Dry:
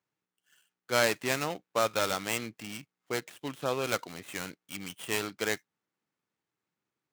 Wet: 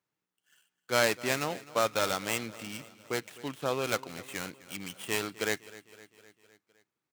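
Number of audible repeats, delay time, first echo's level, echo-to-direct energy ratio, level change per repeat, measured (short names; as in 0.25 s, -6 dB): 4, 0.256 s, -19.0 dB, -17.0 dB, -4.5 dB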